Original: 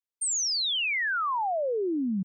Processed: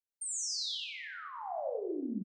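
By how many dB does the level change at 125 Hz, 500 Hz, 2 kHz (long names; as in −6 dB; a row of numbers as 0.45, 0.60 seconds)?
can't be measured, −8.5 dB, −17.0 dB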